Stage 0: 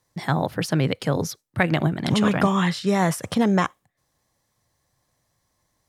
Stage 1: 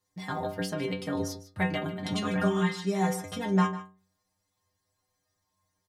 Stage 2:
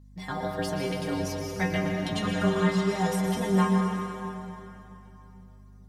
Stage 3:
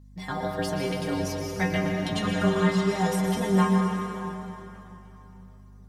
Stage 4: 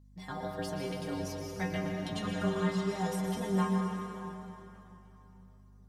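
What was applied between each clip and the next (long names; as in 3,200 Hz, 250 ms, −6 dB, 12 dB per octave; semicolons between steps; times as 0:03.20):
stiff-string resonator 92 Hz, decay 0.5 s, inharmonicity 0.008; slap from a distant wall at 26 metres, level −14 dB; level +3.5 dB
mains hum 50 Hz, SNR 20 dB; convolution reverb RT60 3.1 s, pre-delay 108 ms, DRR 1 dB
feedback echo with a swinging delay time 575 ms, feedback 31%, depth 207 cents, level −23.5 dB; level +1.5 dB
parametric band 2,100 Hz −2.5 dB; level −8 dB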